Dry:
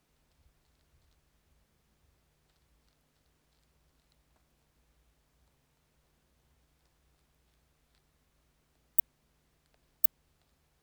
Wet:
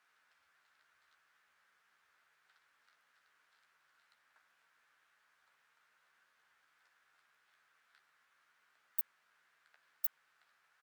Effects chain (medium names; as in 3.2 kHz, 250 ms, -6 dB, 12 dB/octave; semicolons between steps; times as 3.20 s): resonant high-pass 1.5 kHz, resonance Q 2.9; tilt EQ -3.5 dB/octave; doubling 13 ms -6.5 dB; trim +3.5 dB